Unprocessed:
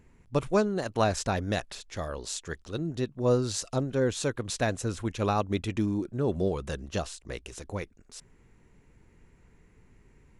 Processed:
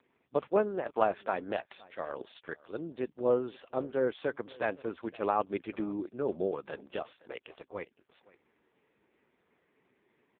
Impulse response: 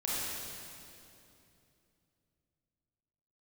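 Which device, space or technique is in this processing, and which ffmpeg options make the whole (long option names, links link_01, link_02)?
satellite phone: -af "highpass=350,lowpass=3200,aecho=1:1:516:0.075" -ar 8000 -c:a libopencore_amrnb -b:a 4750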